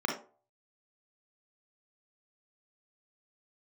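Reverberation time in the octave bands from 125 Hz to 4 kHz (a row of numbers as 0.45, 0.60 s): 0.45, 0.35, 0.45, 0.40, 0.25, 0.20 s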